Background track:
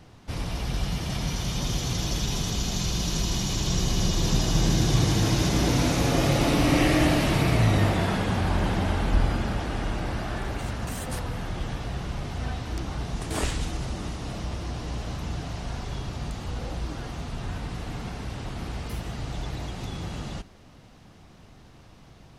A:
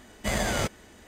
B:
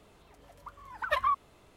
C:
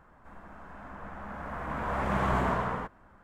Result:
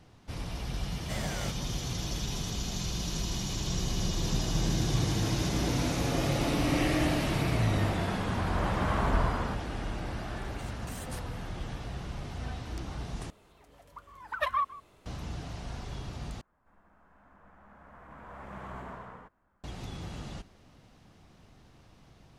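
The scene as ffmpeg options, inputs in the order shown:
-filter_complex "[1:a]asplit=2[s0][s1];[3:a]asplit=2[s2][s3];[0:a]volume=0.473[s4];[s1]acompressor=threshold=0.0126:ratio=6:attack=3.2:release=140:knee=1:detection=peak[s5];[2:a]aecho=1:1:156:0.119[s6];[s4]asplit=3[s7][s8][s9];[s7]atrim=end=13.304[s10];[s6]atrim=end=1.76,asetpts=PTS-STARTPTS,volume=0.841[s11];[s8]atrim=start=15.056:end=16.414[s12];[s3]atrim=end=3.23,asetpts=PTS-STARTPTS,volume=0.178[s13];[s9]atrim=start=19.636[s14];[s0]atrim=end=1.07,asetpts=PTS-STARTPTS,volume=0.299,afade=t=in:d=0.004:c=hsin,afade=t=out:st=1.066:d=0.004:c=hsin,adelay=840[s15];[s5]atrim=end=1.07,asetpts=PTS-STARTPTS,volume=0.141,afade=t=in:d=0.004:c=hsin,afade=t=out:st=1.066:d=0.004:c=hsin,adelay=190953S[s16];[s2]atrim=end=3.23,asetpts=PTS-STARTPTS,volume=0.708,afade=t=in:d=0.004:c=hsin,afade=t=out:st=3.226:d=0.004:c=hsin,adelay=6680[s17];[s10][s11]acrossfade=d=0.004:c1=hsin:c2=hsin[s18];[s18][s12]acrossfade=d=0.004:c1=hsin:c2=hsin[s19];[s19][s13]acrossfade=d=0.004:c1=hsin:c2=hsin[s20];[s20][s14]acrossfade=d=0.004:c1=hsin:c2=hsin[s21];[s21][s15][s16][s17]amix=inputs=4:normalize=0"

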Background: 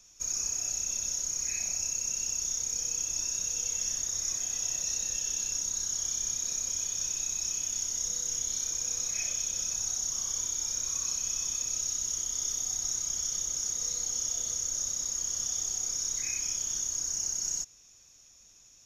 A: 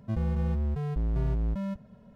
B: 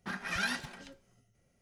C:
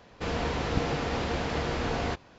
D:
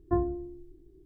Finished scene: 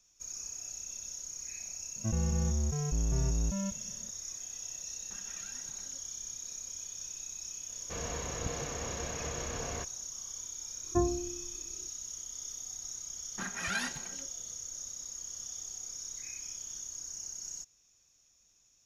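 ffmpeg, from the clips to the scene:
-filter_complex "[2:a]asplit=2[s0][s1];[0:a]volume=0.316[s2];[s0]acompressor=threshold=0.00794:ratio=6:attack=3.2:release=140:knee=1:detection=peak[s3];[3:a]aecho=1:1:1.8:0.32[s4];[1:a]atrim=end=2.15,asetpts=PTS-STARTPTS,volume=0.75,afade=t=in:d=0.004:c=hsin,afade=t=out:st=2.146:d=0.004:c=hsin,adelay=1960[s5];[s3]atrim=end=1.61,asetpts=PTS-STARTPTS,volume=0.316,afade=t=in:d=0.004:c=hsin,afade=t=out:st=1.606:d=0.004:c=hsin,adelay=222705S[s6];[s4]atrim=end=2.38,asetpts=PTS-STARTPTS,volume=0.316,afade=t=in:d=0.004:c=hsin,afade=t=out:st=2.376:d=0.004:c=hsin,adelay=7690[s7];[4:a]atrim=end=1.05,asetpts=PTS-STARTPTS,volume=0.841,afade=t=in:d=0.004:c=hsin,afade=t=out:st=1.046:d=0.004:c=hsin,adelay=10840[s8];[s1]atrim=end=1.61,asetpts=PTS-STARTPTS,volume=0.841,afade=t=in:d=0.004:c=hsin,afade=t=out:st=1.606:d=0.004:c=hsin,adelay=587412S[s9];[s2][s5][s6][s7][s8][s9]amix=inputs=6:normalize=0"

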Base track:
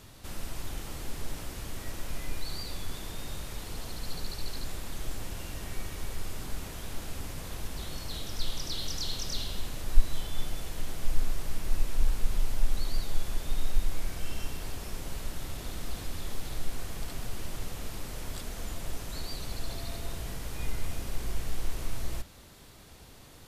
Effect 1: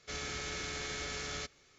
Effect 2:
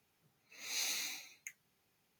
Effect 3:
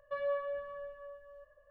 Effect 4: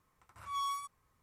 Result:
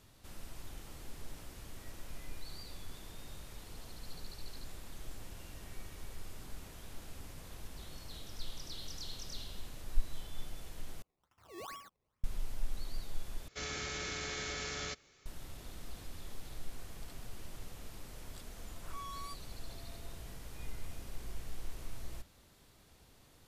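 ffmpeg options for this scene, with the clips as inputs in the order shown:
-filter_complex "[4:a]asplit=2[s0][s1];[0:a]volume=0.299[s2];[s0]acrusher=samples=20:mix=1:aa=0.000001:lfo=1:lforange=20:lforate=2.3[s3];[s1]alimiter=level_in=5.31:limit=0.0631:level=0:latency=1:release=71,volume=0.188[s4];[s2]asplit=3[s5][s6][s7];[s5]atrim=end=11.024[s8];[s3]atrim=end=1.22,asetpts=PTS-STARTPTS,volume=0.299[s9];[s6]atrim=start=12.236:end=13.484[s10];[1:a]atrim=end=1.78,asetpts=PTS-STARTPTS,volume=0.944[s11];[s7]atrim=start=15.256[s12];[s4]atrim=end=1.22,asetpts=PTS-STARTPTS,volume=0.794,afade=t=in:d=0.004:c=hsin,afade=t=out:st=1.216:d=0.004:c=hsin,adelay=18470[s13];[s8][s9]acrossfade=d=0.004:c1=hsin:c2=hsin[s14];[s14][s10]acrossfade=d=0.004:c1=hsin:c2=hsin[s15];[s15][s11]acrossfade=d=0.004:c1=hsin:c2=hsin[s16];[s16][s12]acrossfade=d=0.004:c1=hsin:c2=hsin[s17];[s17][s13]amix=inputs=2:normalize=0"

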